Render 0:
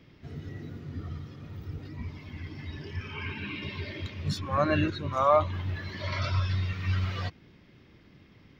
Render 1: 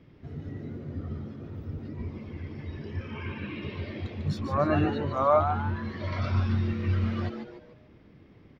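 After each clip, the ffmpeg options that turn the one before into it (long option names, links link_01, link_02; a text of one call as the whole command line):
ffmpeg -i in.wav -filter_complex "[0:a]highshelf=frequency=2000:gain=-12,asplit=2[link_01][link_02];[link_02]asplit=4[link_03][link_04][link_05][link_06];[link_03]adelay=147,afreqshift=130,volume=-8dB[link_07];[link_04]adelay=294,afreqshift=260,volume=-16.4dB[link_08];[link_05]adelay=441,afreqshift=390,volume=-24.8dB[link_09];[link_06]adelay=588,afreqshift=520,volume=-33.2dB[link_10];[link_07][link_08][link_09][link_10]amix=inputs=4:normalize=0[link_11];[link_01][link_11]amix=inputs=2:normalize=0,volume=1.5dB" out.wav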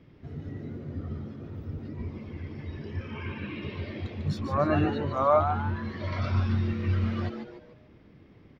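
ffmpeg -i in.wav -af anull out.wav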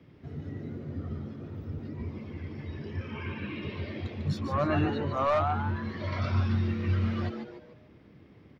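ffmpeg -i in.wav -filter_complex "[0:a]highpass=62,acrossover=split=150|1400[link_01][link_02][link_03];[link_02]asoftclip=type=tanh:threshold=-23.5dB[link_04];[link_01][link_04][link_03]amix=inputs=3:normalize=0" out.wav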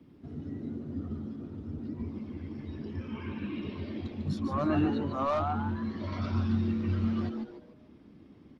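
ffmpeg -i in.wav -af "equalizer=frequency=125:width_type=o:width=1:gain=-7,equalizer=frequency=250:width_type=o:width=1:gain=7,equalizer=frequency=500:width_type=o:width=1:gain=-5,equalizer=frequency=2000:width_type=o:width=1:gain=-7" -ar 48000 -c:a libopus -b:a 32k out.opus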